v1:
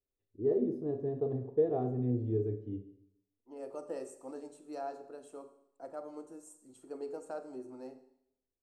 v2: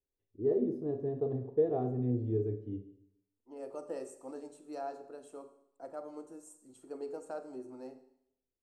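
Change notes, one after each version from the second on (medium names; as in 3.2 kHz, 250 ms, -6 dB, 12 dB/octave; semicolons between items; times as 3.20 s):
no change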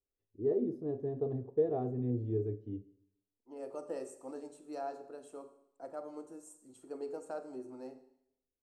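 first voice: send -8.0 dB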